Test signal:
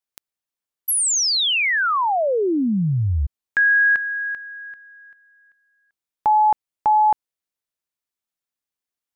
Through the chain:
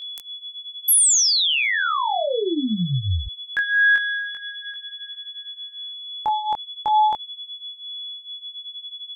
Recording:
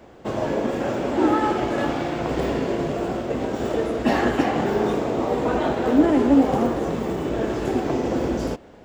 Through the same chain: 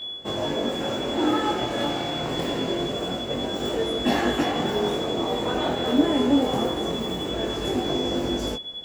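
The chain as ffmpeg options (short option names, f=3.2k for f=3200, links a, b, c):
-af "aemphasis=mode=production:type=cd,aeval=exprs='val(0)+0.0316*sin(2*PI*3400*n/s)':c=same,flanger=delay=20:depth=4.5:speed=0.25"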